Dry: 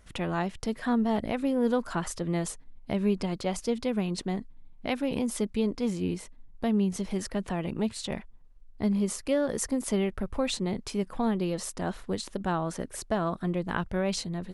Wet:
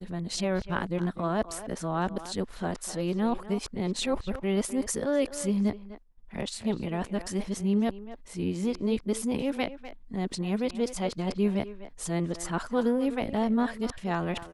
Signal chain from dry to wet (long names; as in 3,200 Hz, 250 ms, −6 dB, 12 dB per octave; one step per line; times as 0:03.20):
played backwards from end to start
far-end echo of a speakerphone 250 ms, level −12 dB
downward expander −43 dBFS